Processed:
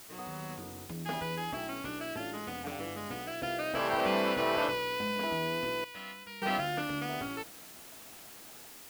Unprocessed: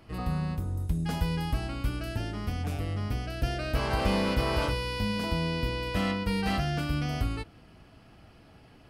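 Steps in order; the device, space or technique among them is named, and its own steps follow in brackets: dictaphone (BPF 320–3300 Hz; AGC gain up to 6 dB; wow and flutter 21 cents; white noise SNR 16 dB); 5.84–6.42 passive tone stack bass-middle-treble 5-5-5; gain -4.5 dB

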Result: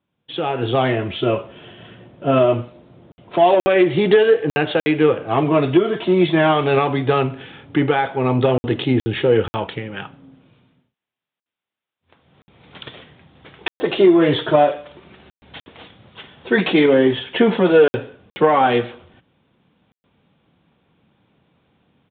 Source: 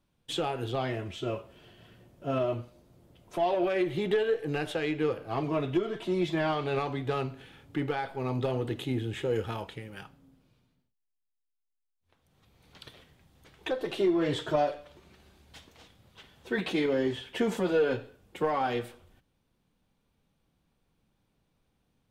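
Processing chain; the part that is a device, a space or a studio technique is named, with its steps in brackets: call with lost packets (HPF 110 Hz 12 dB/oct; downsampling 8000 Hz; AGC gain up to 15 dB; packet loss packets of 60 ms random)

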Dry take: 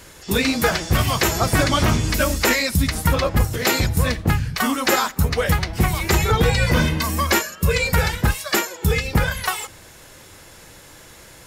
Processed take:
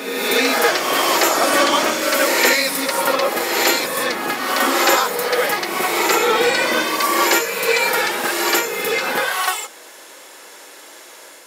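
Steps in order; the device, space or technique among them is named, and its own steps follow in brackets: ghost voice (reverse; reverb RT60 1.7 s, pre-delay 41 ms, DRR -0.5 dB; reverse; HPF 330 Hz 24 dB/oct); gain +2 dB

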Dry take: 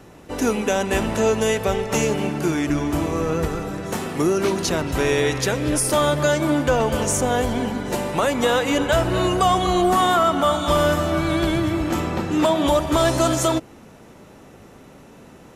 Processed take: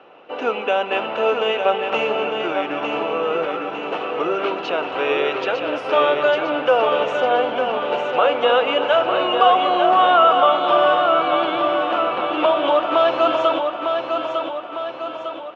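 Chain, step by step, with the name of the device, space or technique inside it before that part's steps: phone earpiece (speaker cabinet 480–3100 Hz, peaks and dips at 510 Hz +6 dB, 740 Hz +5 dB, 1300 Hz +6 dB, 1900 Hz -7 dB, 2800 Hz +9 dB); feedback echo 0.903 s, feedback 52%, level -5.5 dB

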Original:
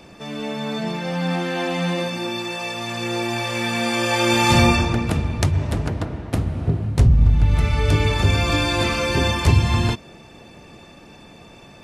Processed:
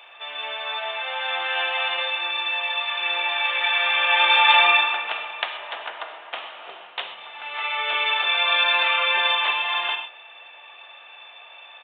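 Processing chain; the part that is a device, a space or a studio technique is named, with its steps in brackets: 6.35–7.26 dynamic EQ 3500 Hz, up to +6 dB, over -51 dBFS, Q 1.3; musical greeting card (downsampling 8000 Hz; HPF 750 Hz 24 dB/oct; bell 3000 Hz +6 dB 0.58 oct); non-linear reverb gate 0.15 s flat, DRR 6 dB; gain +1.5 dB

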